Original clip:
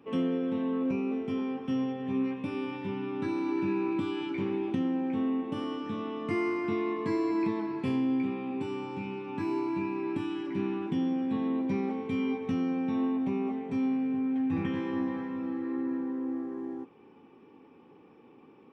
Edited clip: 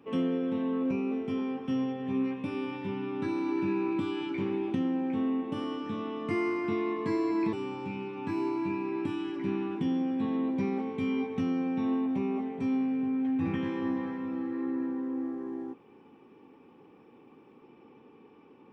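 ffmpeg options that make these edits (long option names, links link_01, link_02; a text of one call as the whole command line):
ffmpeg -i in.wav -filter_complex "[0:a]asplit=2[link_01][link_02];[link_01]atrim=end=7.532[link_03];[link_02]atrim=start=8.638[link_04];[link_03][link_04]acrossfade=duration=0.004:curve1=hsin:curve2=hsin" out.wav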